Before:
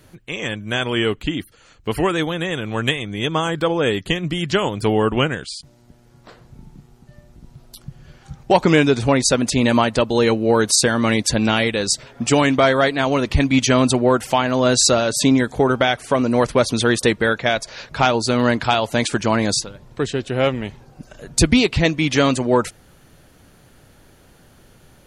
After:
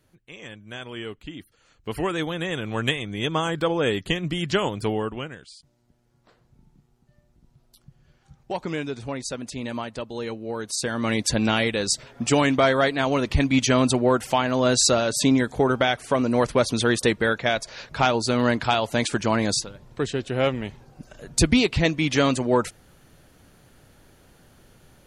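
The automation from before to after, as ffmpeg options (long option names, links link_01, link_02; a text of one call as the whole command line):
ffmpeg -i in.wav -af "volume=7dB,afade=type=in:start_time=1.29:duration=1.28:silence=0.281838,afade=type=out:start_time=4.67:duration=0.53:silence=0.281838,afade=type=in:start_time=10.68:duration=0.62:silence=0.281838" out.wav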